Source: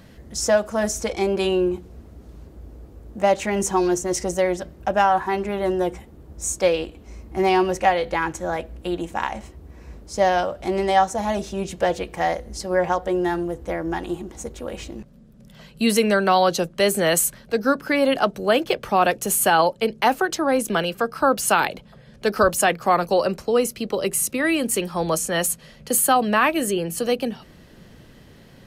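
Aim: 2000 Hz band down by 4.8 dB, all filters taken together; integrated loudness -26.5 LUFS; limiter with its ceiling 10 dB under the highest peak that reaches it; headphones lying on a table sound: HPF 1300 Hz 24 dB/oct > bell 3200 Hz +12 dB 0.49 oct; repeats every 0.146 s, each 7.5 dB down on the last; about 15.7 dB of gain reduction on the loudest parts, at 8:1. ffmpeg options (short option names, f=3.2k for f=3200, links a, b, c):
-af "equalizer=f=2k:t=o:g=-8.5,acompressor=threshold=-31dB:ratio=8,alimiter=level_in=5dB:limit=-24dB:level=0:latency=1,volume=-5dB,highpass=f=1.3k:w=0.5412,highpass=f=1.3k:w=1.3066,equalizer=f=3.2k:t=o:w=0.49:g=12,aecho=1:1:146|292|438|584|730:0.422|0.177|0.0744|0.0312|0.0131,volume=15.5dB"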